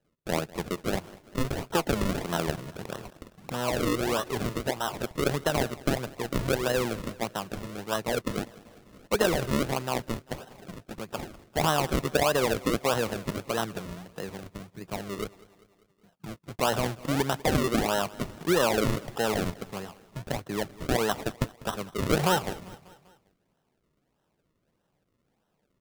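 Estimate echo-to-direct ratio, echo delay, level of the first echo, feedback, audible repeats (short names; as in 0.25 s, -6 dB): -19.0 dB, 0.197 s, -20.5 dB, 55%, 3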